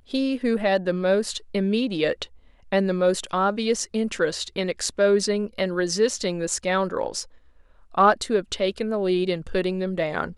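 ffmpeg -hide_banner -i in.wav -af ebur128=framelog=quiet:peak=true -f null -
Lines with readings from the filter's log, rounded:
Integrated loudness:
  I:         -23.9 LUFS
  Threshold: -34.2 LUFS
Loudness range:
  LRA:         0.9 LU
  Threshold: -44.2 LUFS
  LRA low:   -24.6 LUFS
  LRA high:  -23.7 LUFS
True peak:
  Peak:       -5.6 dBFS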